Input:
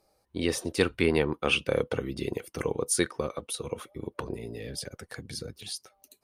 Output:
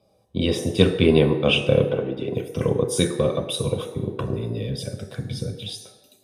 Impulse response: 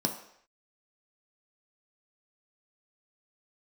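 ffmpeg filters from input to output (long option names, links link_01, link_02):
-filter_complex "[0:a]asettb=1/sr,asplit=3[link_01][link_02][link_03];[link_01]atrim=end=1.864[link_04];[link_02]atrim=start=1.86:end=2.33,asetpts=PTS-STARTPTS,afade=type=in:duration=0.004:curve=qsin,afade=type=out:start_time=0.466:duration=0.004:curve=qsin,acrossover=split=250 2900:gain=0.2 1 0.158[link_05][link_06][link_07];[link_05][link_06][link_07]amix=inputs=3:normalize=0[link_08];[link_03]atrim=start=2.326[link_09];[link_04][link_08]acrossfade=duration=0.004:curve1=hsin:curve2=qsin[link_10];[link_10][link_09]acrossfade=duration=0.004:curve1=qsin:curve2=hsin,asettb=1/sr,asplit=3[link_11][link_12][link_13];[link_11]atrim=end=3.174[link_14];[link_12]atrim=start=3.17:end=3.98,asetpts=PTS-STARTPTS,afade=type=in:duration=0.004:curve=qsin,afade=type=out:start_time=0.806:duration=0.004:curve=qsin,aeval=exprs='0.178*(cos(1*acos(clip(val(0)/0.178,-1,1)))-cos(1*PI/2))+0.0178*(cos(5*acos(clip(val(0)/0.178,-1,1)))-cos(5*PI/2))':channel_layout=same[link_15];[link_13]atrim=start=3.976[link_16];[link_14][link_15]acrossfade=duration=0.004:curve1=hsin:curve2=qsin[link_17];[link_17][link_16]acrossfade=duration=0.004:curve1=qsin:curve2=hsin[link_18];[1:a]atrim=start_sample=2205,asetrate=28665,aresample=44100[link_19];[link_18][link_19]afir=irnorm=-1:irlink=0,volume=-5dB"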